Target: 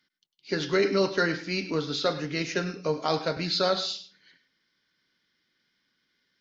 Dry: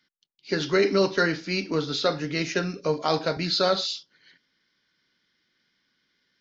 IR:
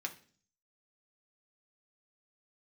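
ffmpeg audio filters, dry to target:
-filter_complex "[0:a]asplit=2[link_01][link_02];[1:a]atrim=start_sample=2205,adelay=100[link_03];[link_02][link_03]afir=irnorm=-1:irlink=0,volume=-13dB[link_04];[link_01][link_04]amix=inputs=2:normalize=0,volume=-2.5dB"

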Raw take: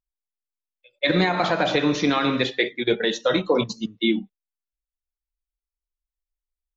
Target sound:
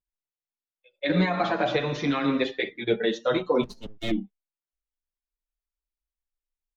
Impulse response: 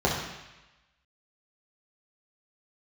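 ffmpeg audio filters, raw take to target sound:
-filter_complex "[0:a]highshelf=frequency=4400:gain=-11.5,asettb=1/sr,asplit=3[link_01][link_02][link_03];[link_01]atrim=end=3.634[link_04];[link_02]atrim=start=3.63:end=4.11,asetpts=PTS-STARTPTS,afade=type=in:duration=0.004:curve=qsin,afade=type=out:start_time=0.476:duration=0.004:curve=qsin,aeval=exprs='max(val(0),0)':channel_layout=same[link_05];[link_03]atrim=start=4.106[link_06];[link_04][link_05]acrossfade=duration=0.004:curve1=hsin:curve2=qsin[link_07];[link_07][link_06]acrossfade=duration=0.004:curve1=qsin:curve2=hsin,asplit=2[link_08][link_09];[link_09]adelay=6.8,afreqshift=0.7[link_10];[link_08][link_10]amix=inputs=2:normalize=1"

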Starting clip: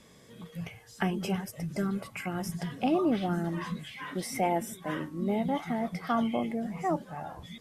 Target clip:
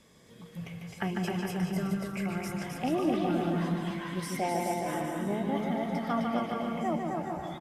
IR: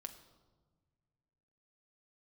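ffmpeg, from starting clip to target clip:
-filter_complex "[0:a]aecho=1:1:260|429|538.8|610.3|656.7:0.631|0.398|0.251|0.158|0.1,asplit=2[link_01][link_02];[1:a]atrim=start_sample=2205,lowpass=7300,adelay=148[link_03];[link_02][link_03]afir=irnorm=-1:irlink=0,volume=0dB[link_04];[link_01][link_04]amix=inputs=2:normalize=0,volume=-3.5dB"

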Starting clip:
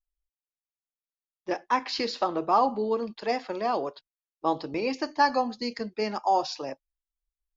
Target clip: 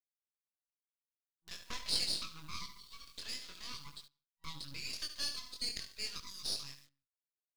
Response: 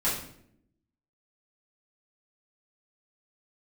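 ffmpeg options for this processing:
-filter_complex "[0:a]aecho=1:1:72|144|216|288:0.282|0.0958|0.0326|0.0111,agate=range=-20dB:threshold=-45dB:ratio=16:detection=peak,acrusher=bits=9:mix=0:aa=0.000001,acrossover=split=310|3000[link_01][link_02][link_03];[link_02]acompressor=threshold=-33dB:ratio=6[link_04];[link_01][link_04][link_03]amix=inputs=3:normalize=0,asplit=2[link_05][link_06];[link_06]highshelf=frequency=3500:gain=-7.5[link_07];[1:a]atrim=start_sample=2205,afade=type=out:start_time=0.23:duration=0.01,atrim=end_sample=10584[link_08];[link_07][link_08]afir=irnorm=-1:irlink=0,volume=-29.5dB[link_09];[link_05][link_09]amix=inputs=2:normalize=0,flanger=delay=20:depth=3.3:speed=0.47,acompressor=mode=upward:threshold=-41dB:ratio=2.5,afftfilt=real='re*(1-between(b*sr/4096,170,960))':imag='im*(1-between(b*sr/4096,170,960))':win_size=4096:overlap=0.75,aeval=exprs='max(val(0),0)':channel_layout=same,equalizer=frequency=125:width_type=o:width=1:gain=-5,equalizer=frequency=1000:width_type=o:width=1:gain=-9,equalizer=frequency=2000:width_type=o:width=1:gain=-5,equalizer=frequency=4000:width_type=o:width=1:gain=6,volume=4dB"

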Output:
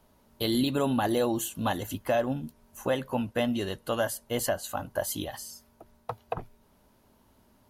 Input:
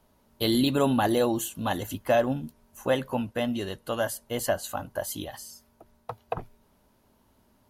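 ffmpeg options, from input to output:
ffmpeg -i in.wav -af "alimiter=limit=-18dB:level=0:latency=1:release=491,volume=1.5dB" out.wav

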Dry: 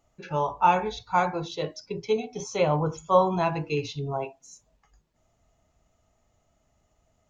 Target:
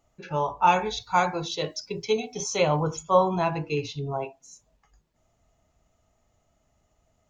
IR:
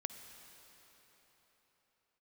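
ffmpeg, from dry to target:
-filter_complex "[0:a]asettb=1/sr,asplit=3[link_01][link_02][link_03];[link_01]atrim=end=0.674[link_04];[link_02]atrim=start=0.67:end=3.03,asetpts=PTS-STARTPTS,afade=type=in:duration=0.004:curve=qsin,afade=type=out:start_time=2.356:duration=0.004:curve=qsin,highshelf=frequency=2800:gain=9.5[link_05];[link_03]atrim=start=3.026[link_06];[link_04][link_05]acrossfade=duration=0.004:curve1=hsin:curve2=qsin[link_07];[link_07][link_06]acrossfade=duration=0.004:curve1=qsin:curve2=hsin"

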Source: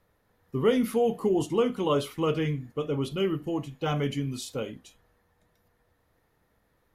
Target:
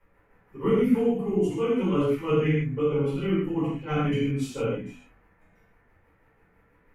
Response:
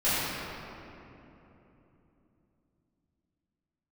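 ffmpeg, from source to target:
-filter_complex "[0:a]highshelf=frequency=3000:width_type=q:width=3:gain=-8,tremolo=f=6.1:d=0.91,acrossover=split=270|3900[link_01][link_02][link_03];[link_02]acompressor=threshold=-37dB:ratio=6[link_04];[link_01][link_04][link_03]amix=inputs=3:normalize=0,bandreject=frequency=50:width_type=h:width=6,bandreject=frequency=100:width_type=h:width=6,bandreject=frequency=150:width_type=h:width=6,bandreject=frequency=200:width_type=h:width=6,bandreject=frequency=250:width_type=h:width=6[link_05];[1:a]atrim=start_sample=2205,afade=type=out:start_time=0.33:duration=0.01,atrim=end_sample=14994,asetrate=70560,aresample=44100[link_06];[link_05][link_06]afir=irnorm=-1:irlink=0"

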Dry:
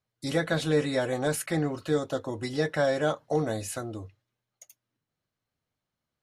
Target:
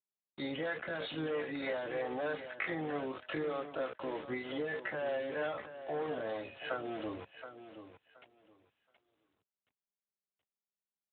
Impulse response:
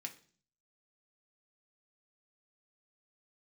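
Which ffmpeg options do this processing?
-filter_complex "[0:a]asplit=2[link_01][link_02];[link_02]highpass=frequency=720:poles=1,volume=21dB,asoftclip=type=tanh:threshold=-12.5dB[link_03];[link_01][link_03]amix=inputs=2:normalize=0,lowpass=frequency=2900:poles=1,volume=-6dB,afftdn=noise_reduction=17:noise_floor=-37,highpass=frequency=240:poles=1,acompressor=threshold=-32dB:ratio=12,agate=range=-33dB:threshold=-50dB:ratio=3:detection=peak,atempo=0.56,acrusher=bits=6:mix=0:aa=0.000001,acrossover=split=400[link_04][link_05];[link_04]aeval=exprs='val(0)*(1-0.5/2+0.5/2*cos(2*PI*3.2*n/s))':channel_layout=same[link_06];[link_05]aeval=exprs='val(0)*(1-0.5/2-0.5/2*cos(2*PI*3.2*n/s))':channel_layout=same[link_07];[link_06][link_07]amix=inputs=2:normalize=0,aecho=1:1:724|1448|2172:0.282|0.0592|0.0124" -ar 8000 -c:a libopencore_amrnb -b:a 12200

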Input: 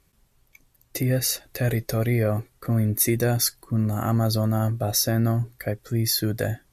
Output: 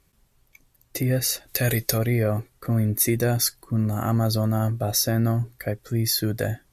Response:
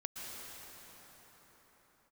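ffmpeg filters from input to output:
-filter_complex "[0:a]asplit=3[link_01][link_02][link_03];[link_01]afade=type=out:start_time=1.47:duration=0.02[link_04];[link_02]highshelf=frequency=2300:gain=11.5,afade=type=in:start_time=1.47:duration=0.02,afade=type=out:start_time=1.97:duration=0.02[link_05];[link_03]afade=type=in:start_time=1.97:duration=0.02[link_06];[link_04][link_05][link_06]amix=inputs=3:normalize=0"

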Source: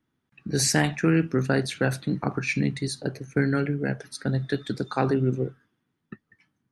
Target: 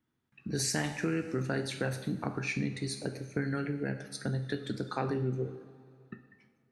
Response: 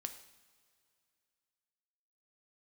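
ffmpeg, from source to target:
-filter_complex "[1:a]atrim=start_sample=2205[link_01];[0:a][link_01]afir=irnorm=-1:irlink=0,acompressor=threshold=-30dB:ratio=2,volume=-1.5dB"

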